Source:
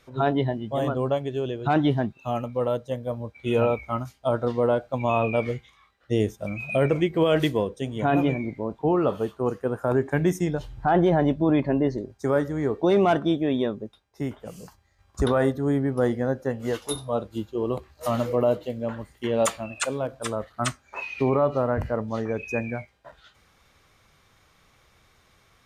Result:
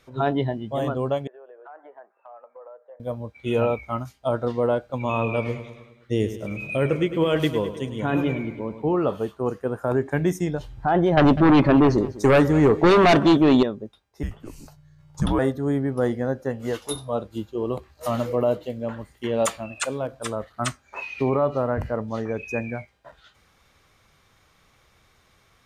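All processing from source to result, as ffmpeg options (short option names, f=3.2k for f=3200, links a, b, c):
-filter_complex "[0:a]asettb=1/sr,asplit=3[a][b][c];[a]atrim=end=1.274[d];[b]atrim=start=1.27:end=3,asetpts=PTS-STARTPTS,afade=t=in:d=0.004:c=qsin,afade=t=out:st=1.726:d=0.004:c=qsin,asuperpass=centerf=920:order=8:qfactor=0.75,acompressor=threshold=-44dB:ratio=4:attack=3.2:release=140:knee=1:detection=peak[e];[c]atrim=start=2.996[f];[d][e]acrossfade=d=0.004:c1=hsin:c2=qsin[g];[g][f]acrossfade=d=0.004:c1=qsin:c2=hsin,asettb=1/sr,asplit=3[h][i][j];[h]atrim=end=4.794[k];[i]atrim=start=4.79:end=8.94,asetpts=PTS-STARTPTS,afade=t=in:d=0.004:c=qsin,afade=t=out:st=4.146:d=0.004:c=qsin,equalizer=f=690:t=o:w=0.31:g=-7.5,aecho=1:1:104|208|312|416|520|624:0.251|0.143|0.0816|0.0465|0.0265|0.0151,atrim=end_sample=183015[l];[j]atrim=start=8.936[m];[k][l]acrossfade=d=0.004:c1=hsin:c2=qsin[n];[n][m]acrossfade=d=0.004:c1=qsin:c2=hsin,asettb=1/sr,asplit=3[o][p][q];[o]atrim=end=11.174[r];[p]atrim=start=11.17:end=13.63,asetpts=PTS-STARTPTS,afade=t=in:d=0.004:c=qsin,afade=t=out:st=2.456:d=0.004:c=qsin,aeval=exprs='0.282*sin(PI/2*2.24*val(0)/0.282)':c=same,aecho=1:1:200:0.133,atrim=end_sample=108486[s];[q]atrim=start=13.626[t];[r][s]acrossfade=d=0.004:c1=hsin:c2=qsin[u];[u][t]acrossfade=d=0.004:c1=qsin:c2=hsin,asettb=1/sr,asplit=3[v][w][x];[v]atrim=end=14.234[y];[w]atrim=start=14.23:end=15.39,asetpts=PTS-STARTPTS,afade=t=in:d=0.004:c=qsin,afade=t=out:st=1.156:d=0.004:c=qsin,aeval=exprs='val(0)+0.00282*(sin(2*PI*60*n/s)+sin(2*PI*2*60*n/s)/2+sin(2*PI*3*60*n/s)/3+sin(2*PI*4*60*n/s)/4+sin(2*PI*5*60*n/s)/5)':c=same,afreqshift=-210[z];[x]atrim=start=15.386[aa];[y][z]acrossfade=d=0.004:c1=hsin:c2=qsin[ab];[ab][aa]acrossfade=d=0.004:c1=qsin:c2=hsin"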